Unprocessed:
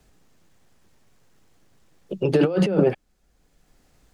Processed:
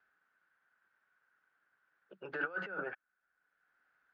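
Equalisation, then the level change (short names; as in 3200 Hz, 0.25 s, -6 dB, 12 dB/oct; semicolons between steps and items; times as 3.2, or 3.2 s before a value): band-pass 1500 Hz, Q 10; air absorption 120 m; +6.0 dB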